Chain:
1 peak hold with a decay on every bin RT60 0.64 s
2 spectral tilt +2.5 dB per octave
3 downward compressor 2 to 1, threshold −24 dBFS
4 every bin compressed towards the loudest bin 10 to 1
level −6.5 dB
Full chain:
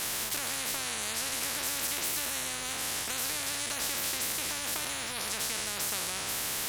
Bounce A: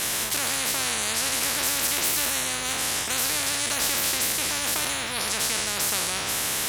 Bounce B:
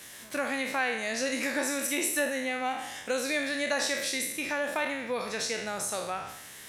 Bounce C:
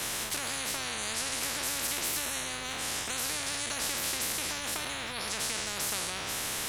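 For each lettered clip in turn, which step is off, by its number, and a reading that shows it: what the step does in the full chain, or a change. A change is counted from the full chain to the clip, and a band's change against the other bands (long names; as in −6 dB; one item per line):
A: 3, average gain reduction 3.5 dB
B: 4, 500 Hz band +11.0 dB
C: 2, change in momentary loudness spread +1 LU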